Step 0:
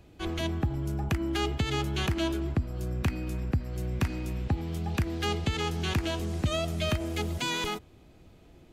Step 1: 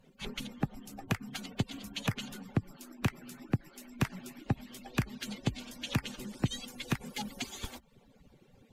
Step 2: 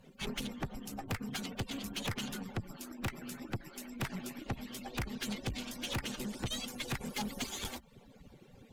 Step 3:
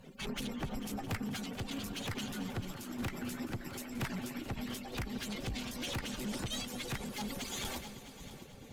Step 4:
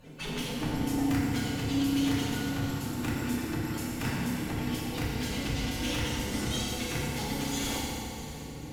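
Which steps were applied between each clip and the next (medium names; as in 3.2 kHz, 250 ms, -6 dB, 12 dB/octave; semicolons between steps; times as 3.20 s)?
harmonic-percussive separation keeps percussive
valve stage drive 38 dB, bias 0.55; trim +6.5 dB
peak limiter -36.5 dBFS, peak gain reduction 8.5 dB; multi-head delay 220 ms, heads all three, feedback 47%, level -16.5 dB; random flutter of the level, depth 55%; trim +8 dB
FDN reverb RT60 2.2 s, low-frequency decay 1.45×, high-frequency decay 0.85×, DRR -6 dB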